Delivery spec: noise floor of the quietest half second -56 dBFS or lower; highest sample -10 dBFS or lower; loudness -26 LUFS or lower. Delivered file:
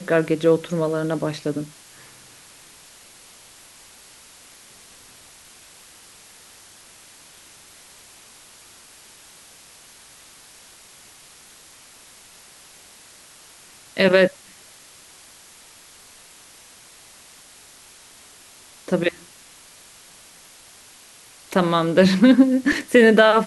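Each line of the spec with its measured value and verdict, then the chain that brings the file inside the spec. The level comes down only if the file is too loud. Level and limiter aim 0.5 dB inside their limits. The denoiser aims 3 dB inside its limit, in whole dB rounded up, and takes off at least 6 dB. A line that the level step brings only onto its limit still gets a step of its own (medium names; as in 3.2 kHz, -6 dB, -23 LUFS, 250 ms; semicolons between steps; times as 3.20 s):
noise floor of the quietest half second -48 dBFS: fail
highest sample -3.5 dBFS: fail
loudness -18.5 LUFS: fail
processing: noise reduction 6 dB, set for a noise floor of -48 dBFS; trim -8 dB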